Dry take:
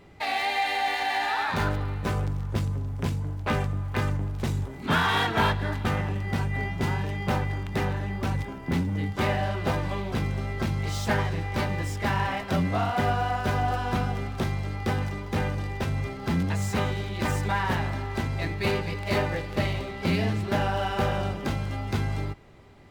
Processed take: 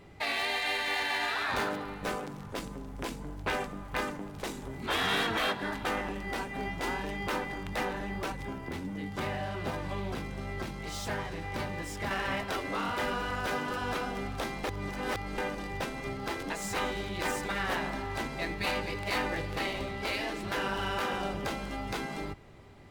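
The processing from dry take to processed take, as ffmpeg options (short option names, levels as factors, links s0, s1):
-filter_complex "[0:a]asettb=1/sr,asplit=3[s0][s1][s2];[s0]atrim=end=8.314[s3];[s1]atrim=start=8.31:end=12.11,asetpts=PTS-STARTPTS,afade=t=in:d=0.004:c=qsin,afade=t=out:st=3.796:d=0.004:c=qsin,acompressor=threshold=0.0355:ratio=3:attack=3.2:release=140:knee=1:detection=peak[s4];[s2]atrim=start=12.106[s5];[s3][s4]acrossfade=d=0.004:c1=hsin:c2=qsin[s6];[s6][s5]acrossfade=d=0.004:c1=qsin:c2=hsin,asplit=3[s7][s8][s9];[s7]atrim=end=14.642[s10];[s8]atrim=start=14.638:end=15.382,asetpts=PTS-STARTPTS,areverse[s11];[s9]atrim=start=15.378[s12];[s10][s11]acrossfade=d=0.004:c1=hsin:c2=hsin[s13];[s13][s12]acrossfade=d=0.004:c1=hsin:c2=hsin,afftfilt=real='re*lt(hypot(re,im),0.2)':imag='im*lt(hypot(re,im),0.2)':win_size=1024:overlap=0.75,equalizer=f=9700:w=1.5:g=2,volume=0.891"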